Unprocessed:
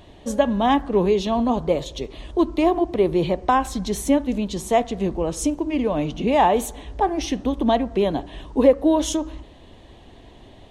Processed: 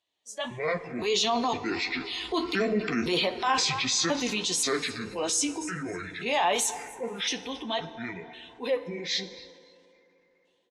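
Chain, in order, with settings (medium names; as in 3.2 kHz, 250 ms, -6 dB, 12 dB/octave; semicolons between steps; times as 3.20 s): pitch shift switched off and on -8.5 st, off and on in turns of 519 ms; Doppler pass-by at 3.44 s, 7 m/s, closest 5.1 m; frequency weighting ITU-R 468; level rider gain up to 14.5 dB; on a send: frequency-shifting echo 274 ms, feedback 46%, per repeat +31 Hz, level -22 dB; on the sum: peak limiter -12.5 dBFS, peak gain reduction 11.5 dB; spectral noise reduction 18 dB; FDN reverb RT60 3.5 s, high-frequency decay 0.45×, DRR 16.5 dB; flange 1.5 Hz, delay 8.3 ms, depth 5.6 ms, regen -31%; transient shaper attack -4 dB, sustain +4 dB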